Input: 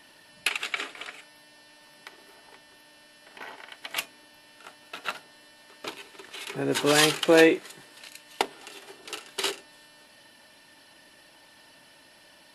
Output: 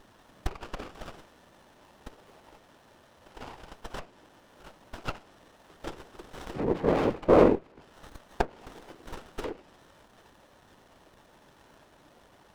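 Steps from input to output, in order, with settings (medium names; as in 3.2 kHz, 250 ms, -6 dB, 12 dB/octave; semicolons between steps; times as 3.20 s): low-pass that closes with the level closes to 940 Hz, closed at -25.5 dBFS; whisper effect; sliding maximum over 17 samples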